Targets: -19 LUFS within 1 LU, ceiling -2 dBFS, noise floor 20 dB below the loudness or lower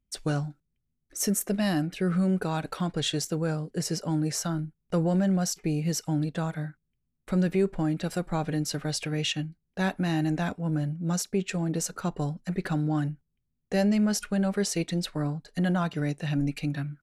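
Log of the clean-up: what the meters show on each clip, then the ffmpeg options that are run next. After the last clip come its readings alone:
loudness -28.5 LUFS; peak -15.0 dBFS; loudness target -19.0 LUFS
-> -af "volume=9.5dB"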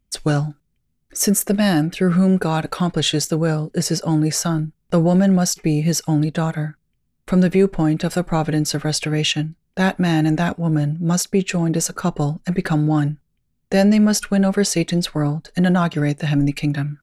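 loudness -19.0 LUFS; peak -5.5 dBFS; noise floor -69 dBFS

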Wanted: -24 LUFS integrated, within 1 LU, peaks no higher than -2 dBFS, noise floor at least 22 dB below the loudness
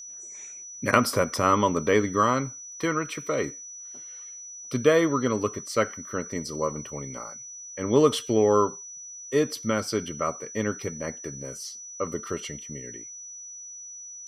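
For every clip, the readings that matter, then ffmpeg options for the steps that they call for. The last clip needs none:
steady tone 5900 Hz; tone level -39 dBFS; loudness -26.5 LUFS; peak -2.5 dBFS; loudness target -24.0 LUFS
-> -af "bandreject=f=5.9k:w=30"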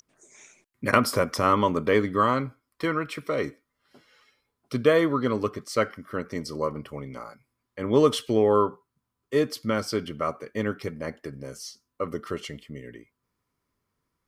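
steady tone none; loudness -26.0 LUFS; peak -2.5 dBFS; loudness target -24.0 LUFS
-> -af "volume=2dB,alimiter=limit=-2dB:level=0:latency=1"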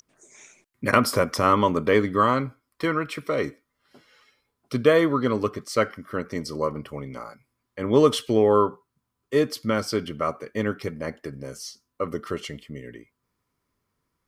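loudness -24.0 LUFS; peak -2.0 dBFS; noise floor -79 dBFS

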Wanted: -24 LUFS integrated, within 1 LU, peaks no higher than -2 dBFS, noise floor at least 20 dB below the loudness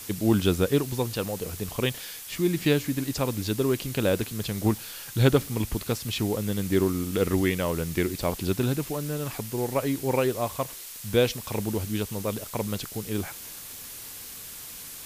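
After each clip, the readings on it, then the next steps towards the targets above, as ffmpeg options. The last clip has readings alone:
noise floor -41 dBFS; noise floor target -48 dBFS; loudness -27.5 LUFS; peak -7.0 dBFS; loudness target -24.0 LUFS
-> -af "afftdn=nr=7:nf=-41"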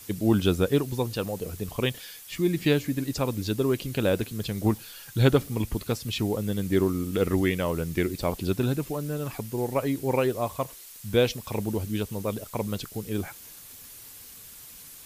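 noise floor -46 dBFS; noise floor target -48 dBFS
-> -af "afftdn=nr=6:nf=-46"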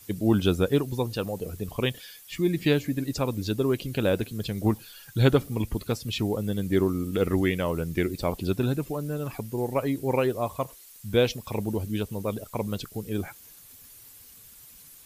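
noise floor -50 dBFS; loudness -27.5 LUFS; peak -7.5 dBFS; loudness target -24.0 LUFS
-> -af "volume=3.5dB"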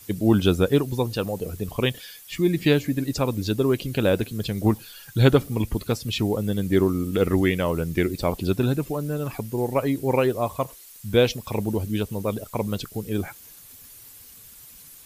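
loudness -24.0 LUFS; peak -4.0 dBFS; noise floor -47 dBFS

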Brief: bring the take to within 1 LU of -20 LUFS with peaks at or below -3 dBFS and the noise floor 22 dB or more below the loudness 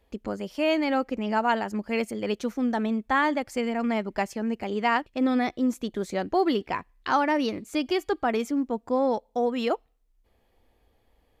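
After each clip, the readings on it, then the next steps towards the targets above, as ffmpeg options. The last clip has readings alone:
loudness -27.0 LUFS; peak -11.0 dBFS; loudness target -20.0 LUFS
-> -af "volume=7dB"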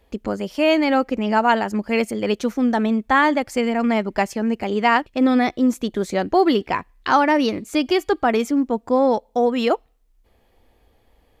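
loudness -20.0 LUFS; peak -4.0 dBFS; noise floor -61 dBFS

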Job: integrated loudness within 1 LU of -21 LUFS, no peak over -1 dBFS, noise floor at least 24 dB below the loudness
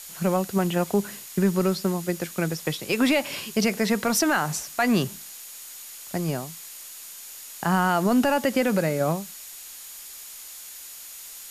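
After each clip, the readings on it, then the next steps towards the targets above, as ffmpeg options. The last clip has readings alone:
steady tone 6800 Hz; tone level -48 dBFS; noise floor -42 dBFS; noise floor target -49 dBFS; loudness -24.5 LUFS; peak -11.5 dBFS; loudness target -21.0 LUFS
-> -af "bandreject=f=6.8k:w=30"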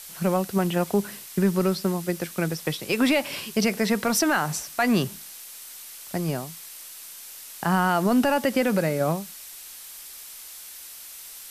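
steady tone none; noise floor -42 dBFS; noise floor target -49 dBFS
-> -af "afftdn=nr=7:nf=-42"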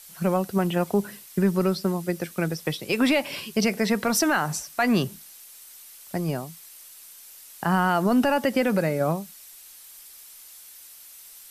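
noise floor -47 dBFS; noise floor target -49 dBFS
-> -af "afftdn=nr=6:nf=-47"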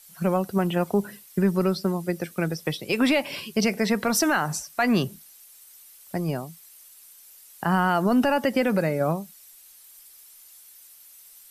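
noise floor -51 dBFS; loudness -24.5 LUFS; peak -11.5 dBFS; loudness target -21.0 LUFS
-> -af "volume=3.5dB"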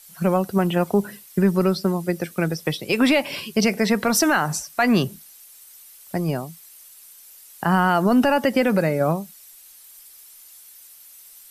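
loudness -21.0 LUFS; peak -8.0 dBFS; noise floor -47 dBFS

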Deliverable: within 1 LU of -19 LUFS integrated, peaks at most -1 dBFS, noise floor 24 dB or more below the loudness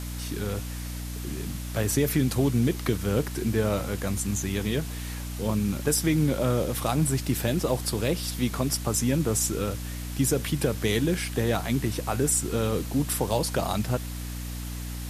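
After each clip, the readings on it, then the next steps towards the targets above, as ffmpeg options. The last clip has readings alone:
hum 60 Hz; harmonics up to 300 Hz; hum level -32 dBFS; noise floor -35 dBFS; noise floor target -51 dBFS; loudness -27.0 LUFS; peak -11.5 dBFS; loudness target -19.0 LUFS
-> -af "bandreject=f=60:t=h:w=4,bandreject=f=120:t=h:w=4,bandreject=f=180:t=h:w=4,bandreject=f=240:t=h:w=4,bandreject=f=300:t=h:w=4"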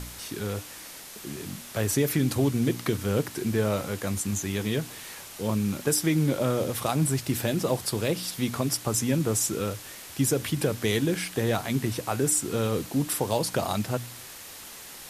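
hum none; noise floor -43 dBFS; noise floor target -51 dBFS
-> -af "afftdn=nr=8:nf=-43"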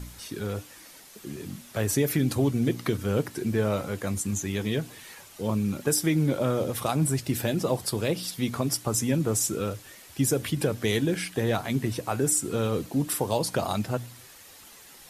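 noise floor -50 dBFS; noise floor target -52 dBFS
-> -af "afftdn=nr=6:nf=-50"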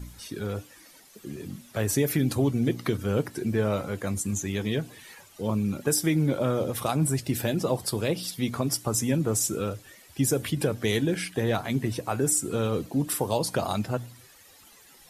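noise floor -54 dBFS; loudness -27.5 LUFS; peak -12.0 dBFS; loudness target -19.0 LUFS
-> -af "volume=8.5dB"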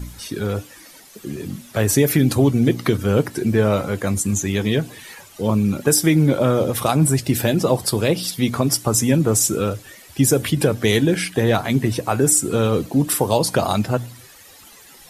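loudness -19.0 LUFS; peak -3.5 dBFS; noise floor -45 dBFS

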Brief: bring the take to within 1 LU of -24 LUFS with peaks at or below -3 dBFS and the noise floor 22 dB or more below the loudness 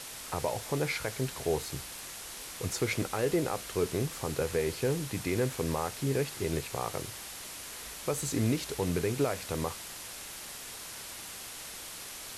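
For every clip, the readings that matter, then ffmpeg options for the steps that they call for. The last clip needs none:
noise floor -44 dBFS; noise floor target -56 dBFS; loudness -33.5 LUFS; peak -17.5 dBFS; loudness target -24.0 LUFS
-> -af "afftdn=nr=12:nf=-44"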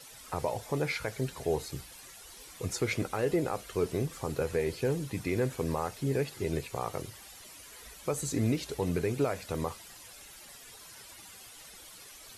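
noise floor -51 dBFS; noise floor target -55 dBFS
-> -af "afftdn=nr=6:nf=-51"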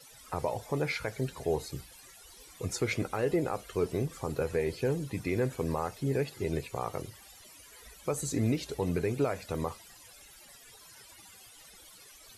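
noise floor -54 dBFS; noise floor target -55 dBFS
-> -af "afftdn=nr=6:nf=-54"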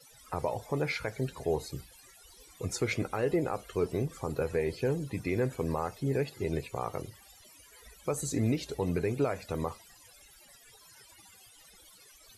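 noise floor -57 dBFS; loudness -33.0 LUFS; peak -18.5 dBFS; loudness target -24.0 LUFS
-> -af "volume=9dB"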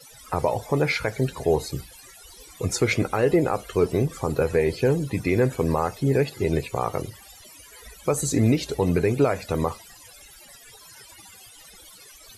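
loudness -24.0 LUFS; peak -9.5 dBFS; noise floor -48 dBFS

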